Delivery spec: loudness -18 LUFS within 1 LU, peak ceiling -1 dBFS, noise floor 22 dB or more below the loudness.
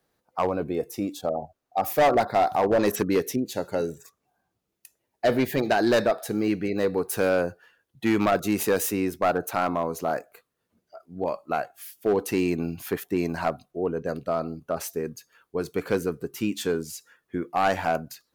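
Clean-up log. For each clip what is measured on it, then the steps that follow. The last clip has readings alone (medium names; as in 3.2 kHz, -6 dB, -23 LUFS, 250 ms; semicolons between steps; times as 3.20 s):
clipped samples 1.2%; clipping level -15.5 dBFS; loudness -26.5 LUFS; peak level -15.5 dBFS; loudness target -18.0 LUFS
-> clip repair -15.5 dBFS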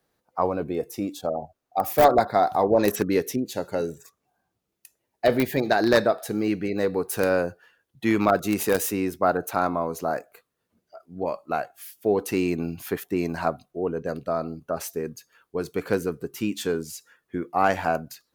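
clipped samples 0.0%; loudness -25.5 LUFS; peak level -6.5 dBFS; loudness target -18.0 LUFS
-> trim +7.5 dB; peak limiter -1 dBFS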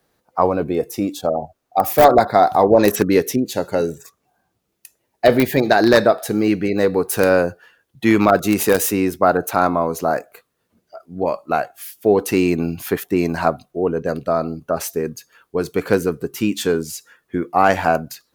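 loudness -18.5 LUFS; peak level -1.0 dBFS; noise floor -72 dBFS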